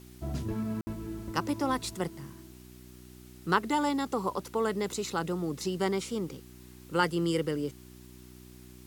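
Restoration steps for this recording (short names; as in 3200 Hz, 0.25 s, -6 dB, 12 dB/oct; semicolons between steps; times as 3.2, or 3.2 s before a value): de-hum 61.9 Hz, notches 6; room tone fill 0.81–0.87; denoiser 26 dB, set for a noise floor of -51 dBFS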